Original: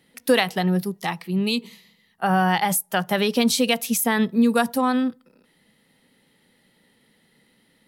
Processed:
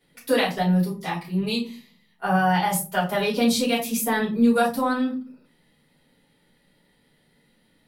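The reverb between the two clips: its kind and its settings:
rectangular room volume 130 cubic metres, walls furnished, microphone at 4.7 metres
level −12 dB

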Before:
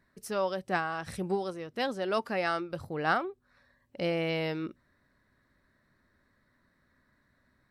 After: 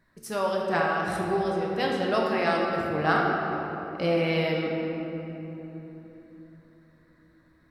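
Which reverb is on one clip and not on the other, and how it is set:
rectangular room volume 210 cubic metres, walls hard, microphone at 0.63 metres
level +1.5 dB

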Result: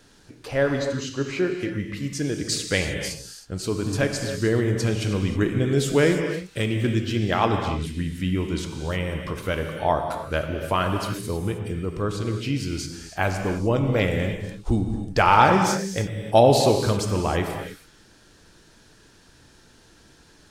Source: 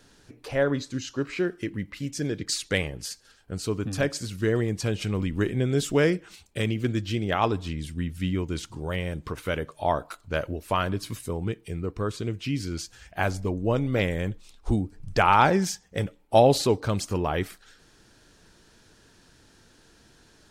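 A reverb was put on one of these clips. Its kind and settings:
reverb whose tail is shaped and stops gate 340 ms flat, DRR 4 dB
level +2 dB

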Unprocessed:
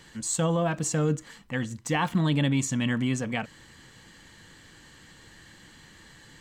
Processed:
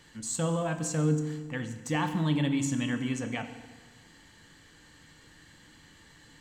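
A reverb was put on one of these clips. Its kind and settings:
feedback delay network reverb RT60 1.4 s, low-frequency decay 1.1×, high-frequency decay 0.85×, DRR 7 dB
level −5 dB

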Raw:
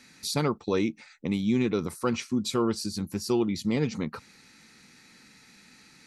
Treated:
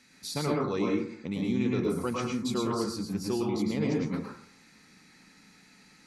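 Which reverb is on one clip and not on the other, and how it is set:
dense smooth reverb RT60 0.57 s, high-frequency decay 0.35×, pre-delay 95 ms, DRR −2.5 dB
level −6 dB

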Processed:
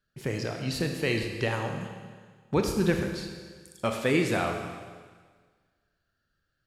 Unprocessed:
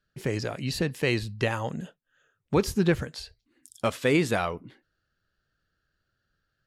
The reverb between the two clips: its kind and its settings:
four-comb reverb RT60 1.6 s, combs from 27 ms, DRR 3.5 dB
level −2.5 dB

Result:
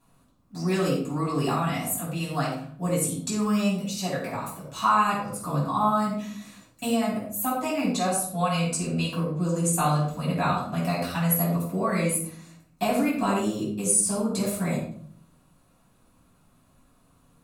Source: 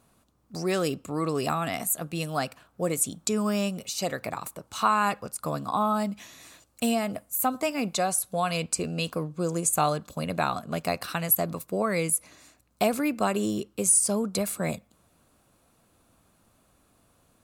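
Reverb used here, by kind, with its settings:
rectangular room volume 730 cubic metres, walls furnished, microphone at 9 metres
level −10 dB

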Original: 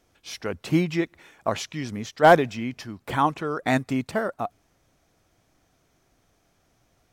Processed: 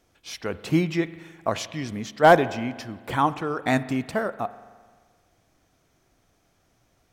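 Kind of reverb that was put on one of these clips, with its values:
spring reverb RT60 1.6 s, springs 43 ms, chirp 20 ms, DRR 15 dB

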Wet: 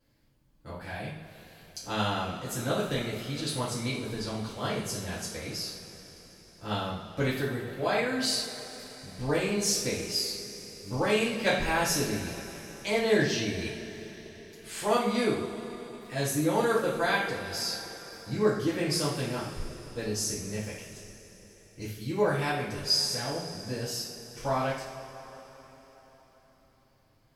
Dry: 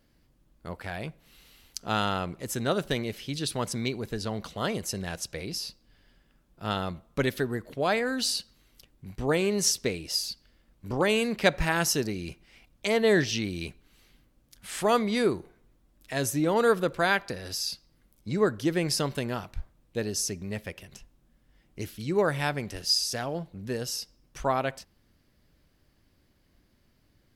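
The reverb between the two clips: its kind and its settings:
coupled-rooms reverb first 0.51 s, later 4.4 s, from −17 dB, DRR −9.5 dB
level −11 dB

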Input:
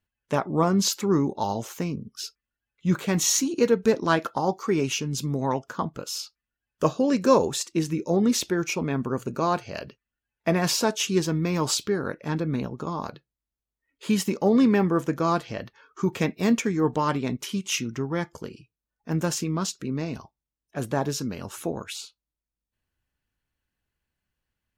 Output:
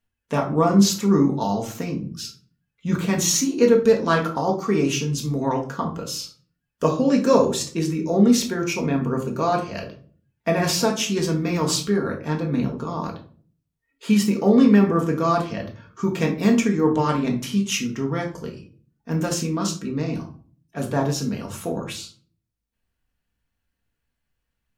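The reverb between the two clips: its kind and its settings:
rectangular room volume 350 cubic metres, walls furnished, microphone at 1.7 metres

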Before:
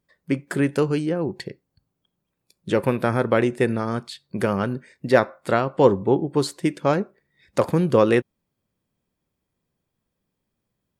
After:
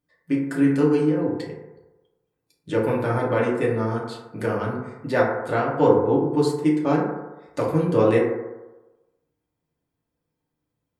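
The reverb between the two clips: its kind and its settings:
feedback delay network reverb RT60 1.1 s, low-frequency decay 0.8×, high-frequency decay 0.3×, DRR −5 dB
level −8 dB

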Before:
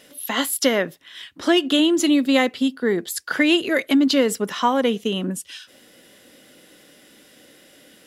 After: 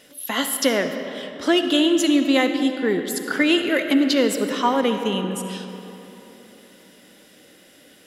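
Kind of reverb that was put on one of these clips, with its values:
comb and all-pass reverb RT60 3.5 s, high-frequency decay 0.55×, pre-delay 25 ms, DRR 6.5 dB
level −1 dB

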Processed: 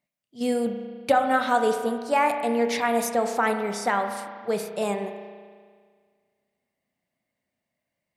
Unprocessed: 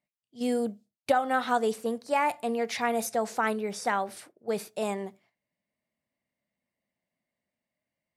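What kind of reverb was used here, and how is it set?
spring reverb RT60 1.8 s, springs 34 ms, chirp 60 ms, DRR 6 dB
level +3.5 dB

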